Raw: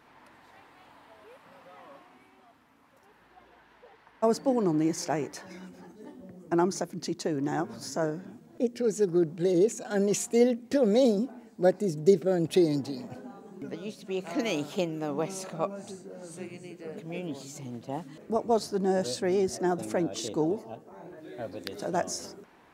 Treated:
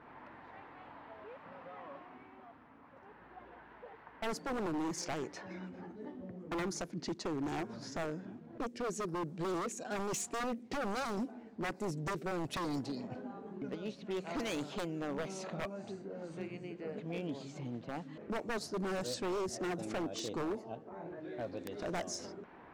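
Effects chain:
downward compressor 1.5 to 1, threshold −53 dBFS, peak gain reduction 13.5 dB
low-pass that shuts in the quiet parts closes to 1,600 Hz, open at −33.5 dBFS
wave folding −35 dBFS
level +4 dB

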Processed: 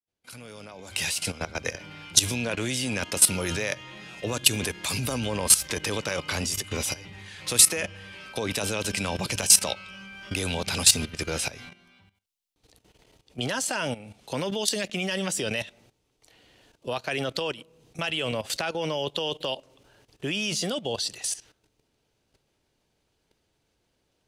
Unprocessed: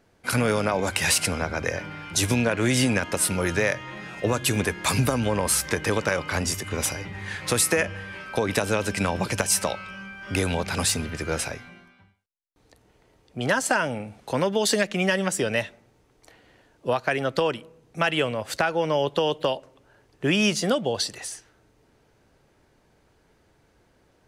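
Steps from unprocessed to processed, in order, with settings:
fade in at the beginning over 2.14 s
high shelf with overshoot 2,300 Hz +6.5 dB, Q 1.5
output level in coarse steps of 15 dB
level +1.5 dB

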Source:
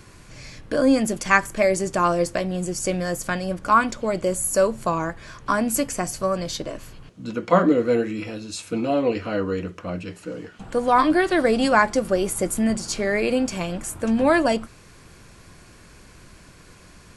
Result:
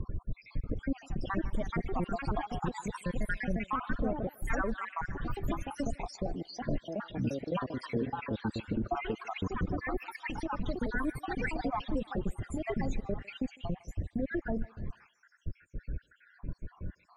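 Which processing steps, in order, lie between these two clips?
time-frequency cells dropped at random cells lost 75%
RIAA equalisation playback
downward compressor 5 to 1, threshold −27 dBFS, peak gain reduction 17 dB
brickwall limiter −24 dBFS, peak gain reduction 8.5 dB
spectral peaks only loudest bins 32
high-frequency loss of the air 54 metres
delay with pitch and tempo change per echo 635 ms, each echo +3 semitones, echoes 2
on a send: feedback echo with a band-pass in the loop 153 ms, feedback 48%, band-pass 1,500 Hz, level −16 dB

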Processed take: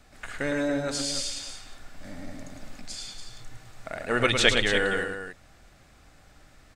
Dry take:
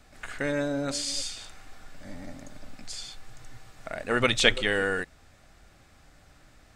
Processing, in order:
loudspeakers that aren't time-aligned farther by 37 metres −6 dB, 98 metres −9 dB
0:02.04–0:02.81: one half of a high-frequency compander encoder only

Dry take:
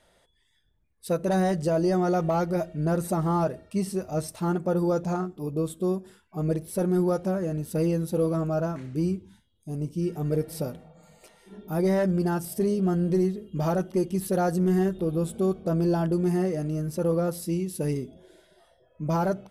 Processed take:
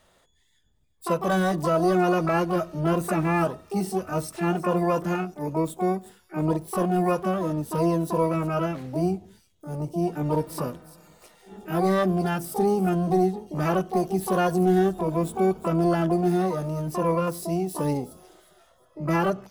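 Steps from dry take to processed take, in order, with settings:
delay with a high-pass on its return 360 ms, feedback 30%, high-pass 3,700 Hz, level −13 dB
pitch-shifted copies added +12 semitones −4 dB

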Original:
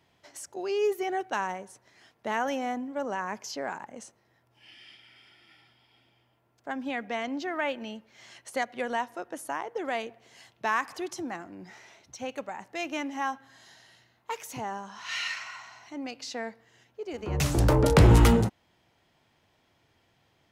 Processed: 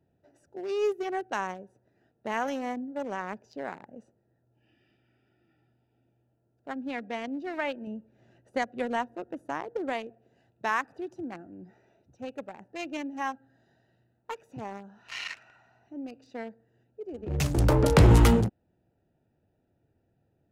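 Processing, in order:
adaptive Wiener filter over 41 samples
0:07.87–0:09.93: low-shelf EQ 400 Hz +6 dB

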